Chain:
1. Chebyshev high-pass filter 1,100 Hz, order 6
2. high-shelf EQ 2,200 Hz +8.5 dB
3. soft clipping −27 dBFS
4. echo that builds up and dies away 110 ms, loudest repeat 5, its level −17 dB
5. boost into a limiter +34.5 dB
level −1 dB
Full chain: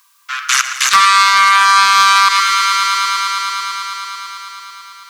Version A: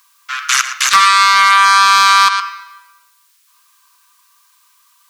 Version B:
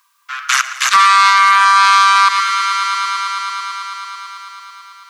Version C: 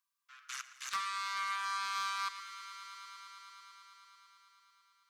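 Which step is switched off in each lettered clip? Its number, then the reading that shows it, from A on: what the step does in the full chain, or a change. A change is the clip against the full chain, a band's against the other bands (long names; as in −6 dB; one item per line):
4, change in momentary loudness spread −4 LU
2, 1 kHz band +4.0 dB
5, change in crest factor +2.5 dB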